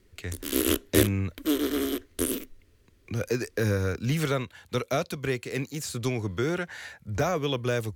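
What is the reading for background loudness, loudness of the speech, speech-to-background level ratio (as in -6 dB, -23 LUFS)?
-28.0 LUFS, -30.0 LUFS, -2.0 dB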